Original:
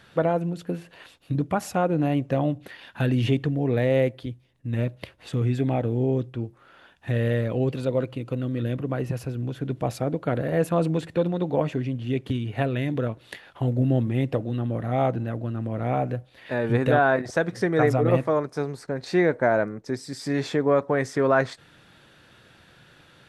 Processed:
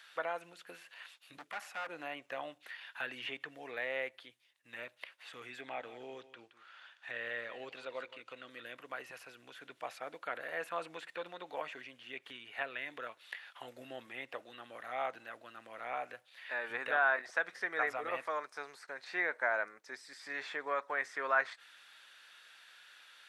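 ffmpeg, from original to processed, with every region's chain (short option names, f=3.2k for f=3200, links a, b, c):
-filter_complex "[0:a]asettb=1/sr,asplit=3[a][b][c];[a]atrim=end=1.374[d];[b]atrim=start=1.37:end=1.89,asetpts=PTS-STARTPTS,afade=t=in:d=0.004:c=qsin,afade=t=out:st=0.516:d=0.004:c=qsin,highpass=f=140:w=0.5412,highpass=f=140:w=1.3066,asoftclip=type=hard:threshold=-26dB[e];[c]atrim=start=1.886[f];[d][e]acrossfade=d=0.004:c1=hsin:c2=qsin[g];[g][f]acrossfade=d=0.004:c1=qsin:c2=hsin,asettb=1/sr,asplit=3[h][i][j];[h]atrim=end=5.614[k];[i]atrim=start=5.61:end=8.5,asetpts=PTS-STARTPTS,afade=t=in:d=0.004:c=qsin,afade=t=out:st=2.886:d=0.004:c=qsin,lowpass=6.9k,aecho=1:1:170:0.178,atrim=end_sample=127449[l];[j]atrim=start=8.496[m];[k][l]acrossfade=d=0.004:c1=hsin:c2=qsin[n];[n][m]acrossfade=d=0.004:c1=qsin:c2=hsin,highpass=1.5k,acrossover=split=2600[o][p];[p]acompressor=threshold=-57dB:ratio=4:attack=1:release=60[q];[o][q]amix=inputs=2:normalize=0"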